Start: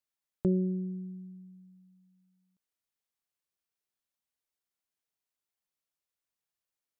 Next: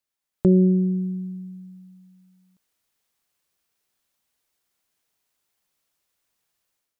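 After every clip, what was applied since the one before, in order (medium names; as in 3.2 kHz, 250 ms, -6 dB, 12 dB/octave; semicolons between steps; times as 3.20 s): level rider gain up to 10 dB; trim +4 dB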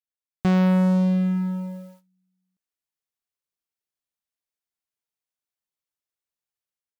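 waveshaping leveller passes 5; trim -7 dB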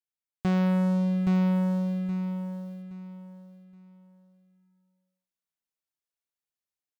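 feedback delay 821 ms, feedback 27%, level -3.5 dB; trim -5.5 dB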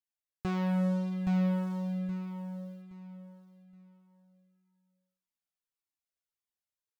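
Shepard-style flanger falling 1.7 Hz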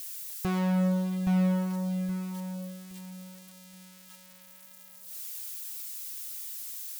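zero-crossing glitches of -35.5 dBFS; trim +3 dB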